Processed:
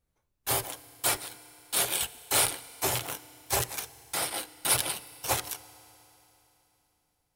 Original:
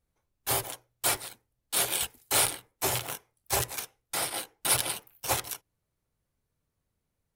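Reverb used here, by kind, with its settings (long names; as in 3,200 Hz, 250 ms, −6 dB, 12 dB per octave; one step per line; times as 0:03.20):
feedback delay network reverb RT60 3.4 s, high-frequency decay 1×, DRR 17.5 dB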